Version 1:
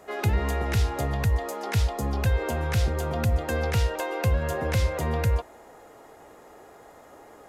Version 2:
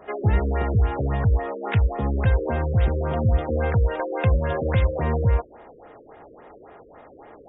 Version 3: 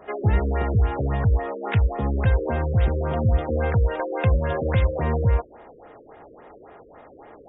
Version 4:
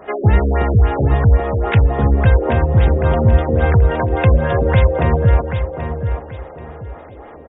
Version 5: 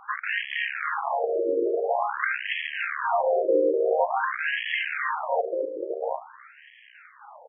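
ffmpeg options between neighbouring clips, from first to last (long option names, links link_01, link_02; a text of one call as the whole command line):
ffmpeg -i in.wav -af "afftfilt=real='re*lt(b*sr/1024,550*pow(3800/550,0.5+0.5*sin(2*PI*3.6*pts/sr)))':imag='im*lt(b*sr/1024,550*pow(3800/550,0.5+0.5*sin(2*PI*3.6*pts/sr)))':win_size=1024:overlap=0.75,volume=4dB" out.wav
ffmpeg -i in.wav -af anull out.wav
ffmpeg -i in.wav -af "aecho=1:1:782|1564|2346:0.398|0.115|0.0335,volume=7.5dB" out.wav
ffmpeg -i in.wav -af "acrusher=bits=4:dc=4:mix=0:aa=0.000001,aresample=22050,aresample=44100,afftfilt=real='re*between(b*sr/1024,410*pow(2400/410,0.5+0.5*sin(2*PI*0.48*pts/sr))/1.41,410*pow(2400/410,0.5+0.5*sin(2*PI*0.48*pts/sr))*1.41)':imag='im*between(b*sr/1024,410*pow(2400/410,0.5+0.5*sin(2*PI*0.48*pts/sr))/1.41,410*pow(2400/410,0.5+0.5*sin(2*PI*0.48*pts/sr))*1.41)':win_size=1024:overlap=0.75" out.wav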